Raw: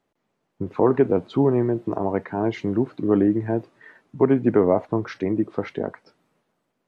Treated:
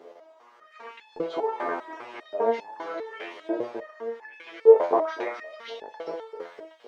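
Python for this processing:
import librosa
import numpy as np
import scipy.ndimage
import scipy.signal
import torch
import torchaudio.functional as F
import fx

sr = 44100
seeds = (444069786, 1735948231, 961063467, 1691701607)

p1 = fx.bin_compress(x, sr, power=0.6)
p2 = fx.rider(p1, sr, range_db=10, speed_s=2.0)
p3 = p1 + (p2 * librosa.db_to_amplitude(1.5))
p4 = fx.filter_lfo_highpass(p3, sr, shape='saw_up', hz=0.86, low_hz=420.0, high_hz=4200.0, q=3.1)
p5 = p4 + fx.echo_feedback(p4, sr, ms=256, feedback_pct=52, wet_db=-11, dry=0)
y = fx.resonator_held(p5, sr, hz=5.0, low_hz=86.0, high_hz=860.0)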